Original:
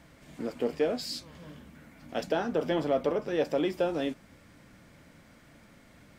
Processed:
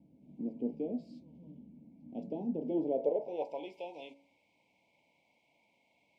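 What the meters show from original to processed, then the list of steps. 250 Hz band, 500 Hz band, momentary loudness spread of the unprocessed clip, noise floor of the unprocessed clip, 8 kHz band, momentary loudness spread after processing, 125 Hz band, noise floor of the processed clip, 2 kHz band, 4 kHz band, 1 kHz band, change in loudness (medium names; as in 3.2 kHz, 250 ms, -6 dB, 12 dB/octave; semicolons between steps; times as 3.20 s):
-4.0 dB, -7.5 dB, 19 LU, -57 dBFS, no reading, 21 LU, -9.0 dB, -74 dBFS, -20.0 dB, under -15 dB, -10.0 dB, -6.5 dB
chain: Chebyshev band-stop 970–2200 Hz, order 5; de-hum 55.9 Hz, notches 33; band-pass sweep 230 Hz -> 1.5 kHz, 2.59–3.77 s; trim +1.5 dB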